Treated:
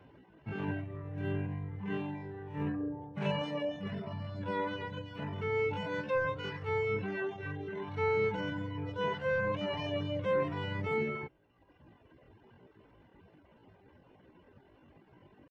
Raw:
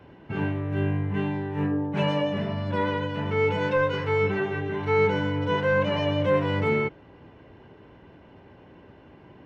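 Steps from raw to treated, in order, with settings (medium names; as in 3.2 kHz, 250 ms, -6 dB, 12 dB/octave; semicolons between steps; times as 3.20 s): tempo 0.61×; reverb removal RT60 1.2 s; trim -7 dB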